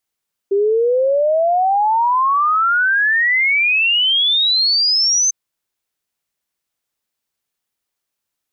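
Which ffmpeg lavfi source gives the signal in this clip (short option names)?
-f lavfi -i "aevalsrc='0.251*clip(min(t,4.8-t)/0.01,0,1)*sin(2*PI*390*4.8/log(6300/390)*(exp(log(6300/390)*t/4.8)-1))':d=4.8:s=44100"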